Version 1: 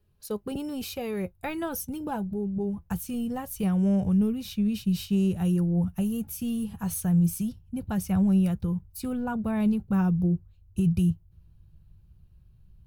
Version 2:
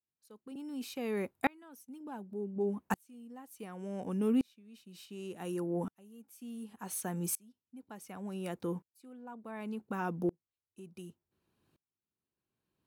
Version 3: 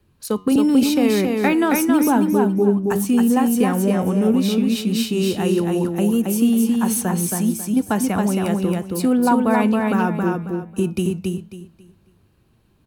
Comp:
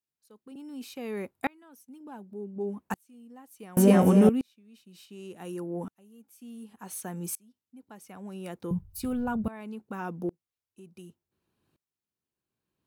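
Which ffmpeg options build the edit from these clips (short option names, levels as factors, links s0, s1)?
-filter_complex "[1:a]asplit=3[s0][s1][s2];[s0]atrim=end=3.772[s3];[2:a]atrim=start=3.768:end=4.292[s4];[s1]atrim=start=4.288:end=8.712[s5];[0:a]atrim=start=8.708:end=9.482[s6];[s2]atrim=start=9.478[s7];[s3][s4]acrossfade=d=0.004:c1=hsin:c2=hsin[s8];[s8][s5]acrossfade=d=0.004:c1=hsin:c2=hsin[s9];[s9][s6]acrossfade=d=0.004:c1=hsin:c2=hsin[s10];[s10][s7]acrossfade=d=0.004:c1=hsin:c2=hsin"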